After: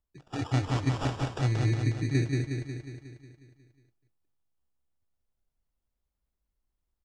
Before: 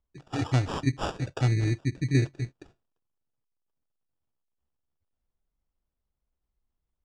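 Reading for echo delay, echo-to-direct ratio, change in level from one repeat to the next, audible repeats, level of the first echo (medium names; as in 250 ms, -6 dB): 181 ms, -1.0 dB, -4.5 dB, 7, -3.0 dB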